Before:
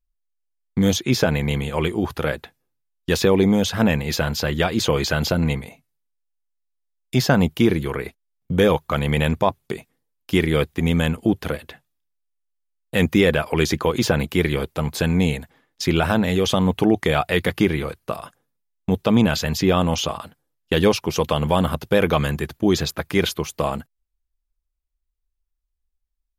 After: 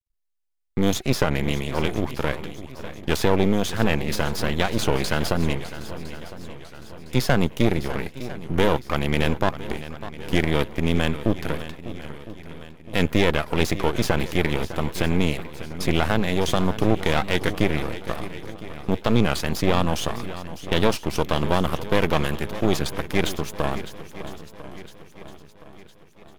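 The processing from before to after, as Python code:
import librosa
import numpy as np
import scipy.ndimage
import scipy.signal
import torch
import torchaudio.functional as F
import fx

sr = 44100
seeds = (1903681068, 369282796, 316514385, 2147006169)

y = np.maximum(x, 0.0)
y = fx.echo_swing(y, sr, ms=1009, ratio=1.5, feedback_pct=45, wet_db=-14.0)
y = fx.record_warp(y, sr, rpm=33.33, depth_cents=100.0)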